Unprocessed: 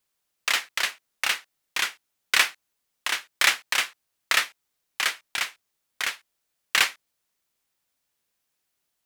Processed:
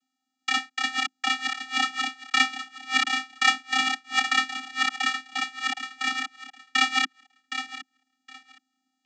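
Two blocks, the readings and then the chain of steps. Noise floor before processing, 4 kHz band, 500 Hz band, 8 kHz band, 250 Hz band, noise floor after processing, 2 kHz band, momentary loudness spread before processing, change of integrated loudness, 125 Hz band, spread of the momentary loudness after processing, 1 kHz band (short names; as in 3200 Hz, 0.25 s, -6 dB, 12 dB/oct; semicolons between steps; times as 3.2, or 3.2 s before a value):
-79 dBFS, +1.0 dB, under -10 dB, -4.5 dB, +15.0 dB, -81 dBFS, +0.5 dB, 11 LU, 0.0 dB, n/a, 11 LU, +6.0 dB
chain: regenerating reverse delay 0.383 s, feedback 42%, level -2 dB; vocoder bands 16, square 260 Hz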